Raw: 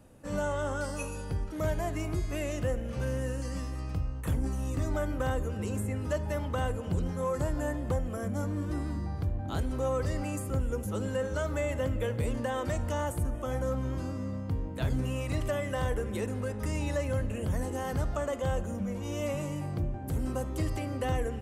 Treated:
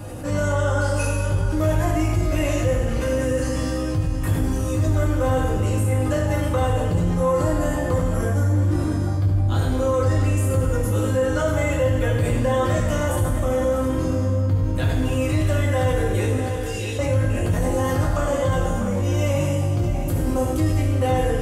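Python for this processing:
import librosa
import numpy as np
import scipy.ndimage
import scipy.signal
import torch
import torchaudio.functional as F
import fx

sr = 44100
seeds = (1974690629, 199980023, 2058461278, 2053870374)

y = fx.ladder_highpass(x, sr, hz=2700.0, resonance_pct=50, at=(16.37, 16.99))
y = y + 10.0 ** (-12.5 / 20.0) * np.pad(y, (int(649 * sr / 1000.0), 0))[:len(y)]
y = fx.rev_fdn(y, sr, rt60_s=1.2, lf_ratio=0.8, hf_ratio=1.0, size_ms=57.0, drr_db=-5.0)
y = fx.env_flatten(y, sr, amount_pct=50)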